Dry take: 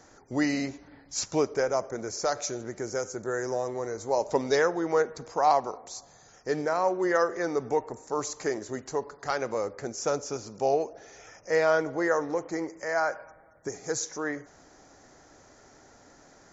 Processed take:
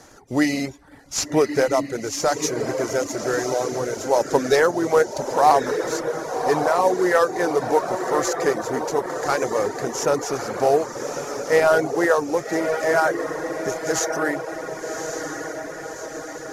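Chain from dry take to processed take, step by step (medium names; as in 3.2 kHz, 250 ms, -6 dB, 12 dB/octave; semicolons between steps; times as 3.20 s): CVSD coder 64 kbps; echo that smears into a reverb 1158 ms, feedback 61%, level -6 dB; reverb removal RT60 0.51 s; trim +7.5 dB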